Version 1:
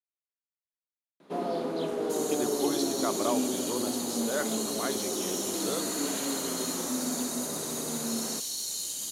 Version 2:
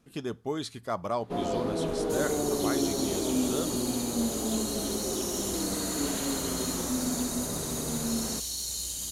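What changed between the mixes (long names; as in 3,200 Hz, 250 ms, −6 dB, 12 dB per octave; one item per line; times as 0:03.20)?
speech: entry −2.15 s
master: remove high-pass filter 220 Hz 12 dB per octave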